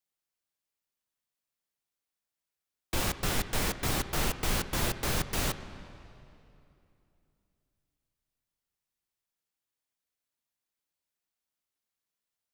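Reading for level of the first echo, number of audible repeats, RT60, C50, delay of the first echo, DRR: no echo audible, no echo audible, 2.8 s, 11.5 dB, no echo audible, 11.0 dB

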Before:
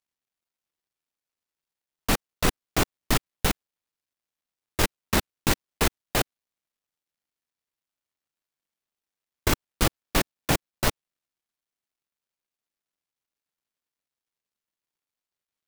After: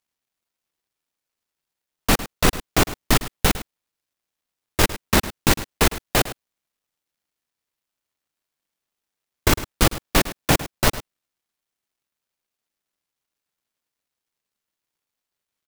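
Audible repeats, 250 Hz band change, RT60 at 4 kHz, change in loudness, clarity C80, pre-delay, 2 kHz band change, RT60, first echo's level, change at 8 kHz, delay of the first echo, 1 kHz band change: 1, +5.5 dB, no reverb audible, +5.5 dB, no reverb audible, no reverb audible, +5.5 dB, no reverb audible, −15.0 dB, +5.5 dB, 105 ms, +5.5 dB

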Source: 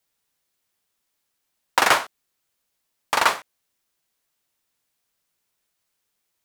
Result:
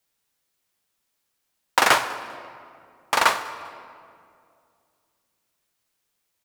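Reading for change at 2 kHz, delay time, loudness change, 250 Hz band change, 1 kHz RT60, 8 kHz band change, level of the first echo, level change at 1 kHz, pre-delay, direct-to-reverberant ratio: +0.5 dB, 198 ms, −1.0 dB, +0.5 dB, 2.2 s, 0.0 dB, −22.5 dB, +0.5 dB, 19 ms, 10.5 dB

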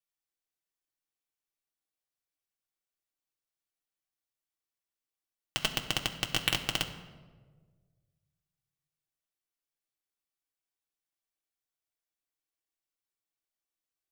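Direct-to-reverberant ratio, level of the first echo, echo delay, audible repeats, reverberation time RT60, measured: 1.5 dB, no echo audible, no echo audible, no echo audible, 1.5 s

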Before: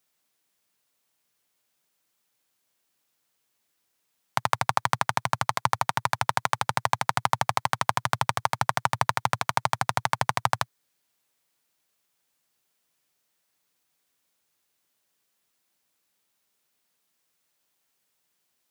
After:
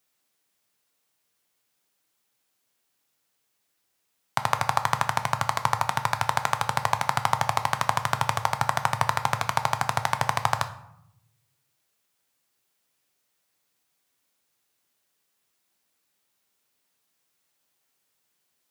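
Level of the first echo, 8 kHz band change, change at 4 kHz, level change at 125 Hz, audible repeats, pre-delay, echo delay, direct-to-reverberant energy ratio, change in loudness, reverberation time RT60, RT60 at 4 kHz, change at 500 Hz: no echo audible, +0.5 dB, +0.5 dB, +2.0 dB, no echo audible, 3 ms, no echo audible, 8.0 dB, +1.0 dB, 0.75 s, 0.50 s, +1.0 dB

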